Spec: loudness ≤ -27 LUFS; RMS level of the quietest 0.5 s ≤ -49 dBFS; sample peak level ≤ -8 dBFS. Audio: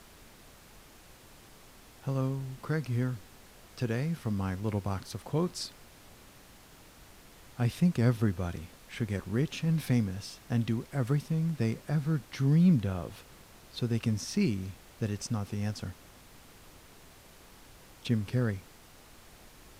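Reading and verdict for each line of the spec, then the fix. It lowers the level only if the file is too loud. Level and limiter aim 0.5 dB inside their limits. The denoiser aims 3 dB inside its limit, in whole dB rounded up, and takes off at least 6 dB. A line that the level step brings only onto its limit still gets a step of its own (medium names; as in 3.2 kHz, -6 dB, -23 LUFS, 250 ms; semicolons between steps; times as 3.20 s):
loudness -31.5 LUFS: pass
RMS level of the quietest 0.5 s -55 dBFS: pass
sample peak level -14.0 dBFS: pass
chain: none needed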